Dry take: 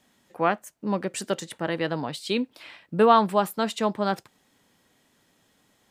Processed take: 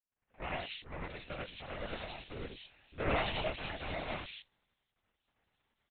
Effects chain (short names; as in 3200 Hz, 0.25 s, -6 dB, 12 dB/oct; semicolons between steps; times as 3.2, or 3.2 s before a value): median filter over 41 samples; gate with hold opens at -58 dBFS; differentiator; crackle 32/s -60 dBFS; bands offset in time lows, highs 0.17 s, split 2700 Hz; non-linear reverb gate 0.13 s rising, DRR -4 dB; LPC vocoder at 8 kHz whisper; gain +5.5 dB